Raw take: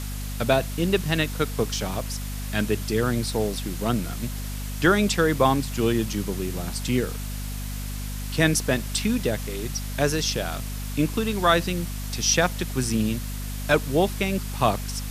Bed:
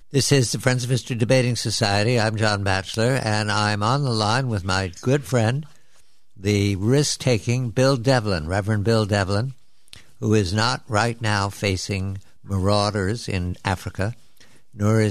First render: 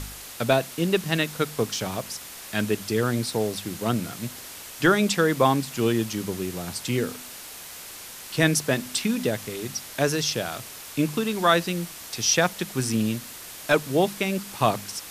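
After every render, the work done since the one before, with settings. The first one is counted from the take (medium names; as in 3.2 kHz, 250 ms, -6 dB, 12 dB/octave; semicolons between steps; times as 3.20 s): de-hum 50 Hz, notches 5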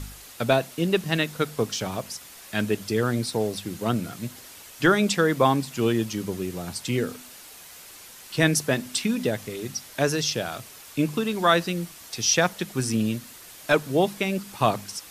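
noise reduction 6 dB, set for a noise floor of -41 dBFS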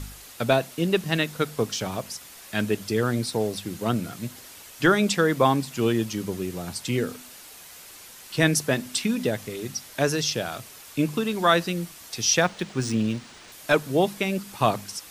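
12.42–13.52 s: decimation joined by straight lines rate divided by 3×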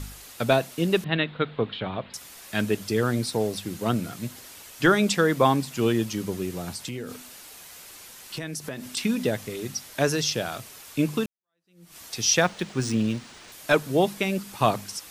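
1.04–2.14 s: elliptic low-pass 3.8 kHz; 6.74–8.97 s: compression, threshold -30 dBFS; 11.26–11.96 s: fade in exponential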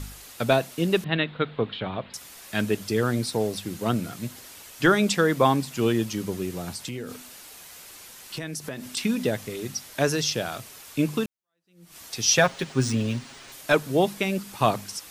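12.27–13.61 s: comb 7.4 ms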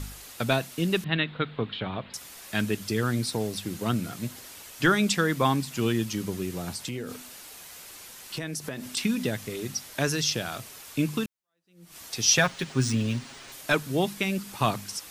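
dynamic bell 560 Hz, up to -7 dB, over -34 dBFS, Q 0.89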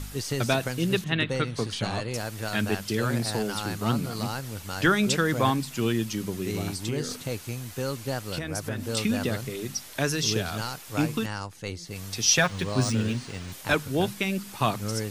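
add bed -13 dB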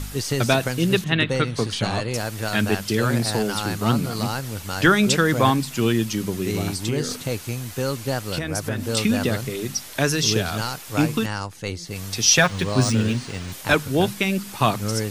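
trim +5.5 dB; peak limiter -3 dBFS, peak gain reduction 1 dB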